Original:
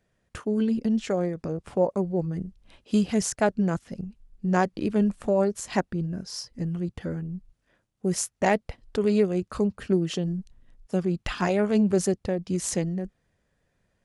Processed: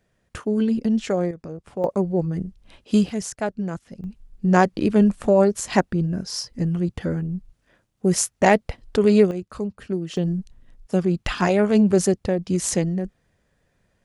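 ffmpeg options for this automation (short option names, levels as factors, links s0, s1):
-af "asetnsamples=n=441:p=0,asendcmd='1.31 volume volume -4dB;1.84 volume volume 4.5dB;3.09 volume volume -3dB;4.04 volume volume 6.5dB;9.31 volume volume -3dB;10.17 volume volume 5dB',volume=1.5"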